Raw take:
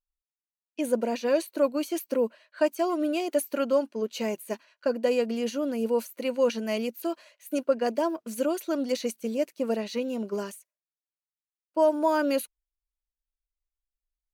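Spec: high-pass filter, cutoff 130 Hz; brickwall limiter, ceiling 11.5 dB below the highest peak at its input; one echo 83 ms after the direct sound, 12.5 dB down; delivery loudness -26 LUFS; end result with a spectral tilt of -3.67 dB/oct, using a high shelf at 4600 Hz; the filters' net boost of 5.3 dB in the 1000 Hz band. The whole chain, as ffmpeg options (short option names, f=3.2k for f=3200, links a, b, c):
-af "highpass=130,equalizer=f=1k:t=o:g=6.5,highshelf=f=4.6k:g=-6.5,alimiter=limit=-20dB:level=0:latency=1,aecho=1:1:83:0.237,volume=4.5dB"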